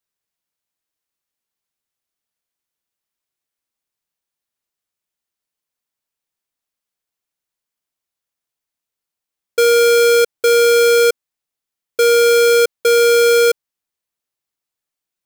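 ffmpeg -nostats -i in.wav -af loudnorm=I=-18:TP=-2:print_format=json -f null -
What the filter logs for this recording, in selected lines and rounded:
"input_i" : "-12.5",
"input_tp" : "-8.9",
"input_lra" : "2.5",
"input_thresh" : "-22.9",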